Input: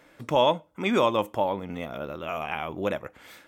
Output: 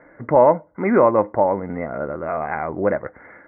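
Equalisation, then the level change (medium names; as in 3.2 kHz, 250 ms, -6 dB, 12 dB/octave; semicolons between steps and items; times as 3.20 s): rippled Chebyshev low-pass 2.1 kHz, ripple 3 dB; band-stop 1.3 kHz, Q 24; +9.0 dB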